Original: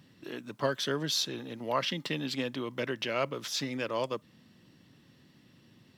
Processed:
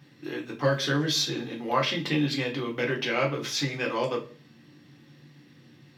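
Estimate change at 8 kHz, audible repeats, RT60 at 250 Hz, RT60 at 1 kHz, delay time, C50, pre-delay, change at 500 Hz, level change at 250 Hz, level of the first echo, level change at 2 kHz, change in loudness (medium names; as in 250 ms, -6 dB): +3.5 dB, no echo, 0.55 s, 0.35 s, no echo, 12.0 dB, 3 ms, +4.5 dB, +6.5 dB, no echo, +7.0 dB, +5.5 dB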